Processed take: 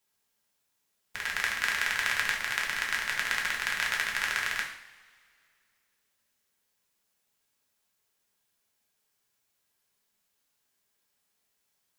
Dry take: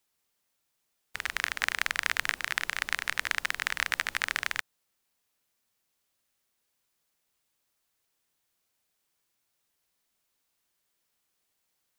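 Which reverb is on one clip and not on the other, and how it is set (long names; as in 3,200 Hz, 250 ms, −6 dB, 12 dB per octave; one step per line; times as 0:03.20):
coupled-rooms reverb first 0.59 s, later 2.4 s, from −21 dB, DRR −2 dB
level −3 dB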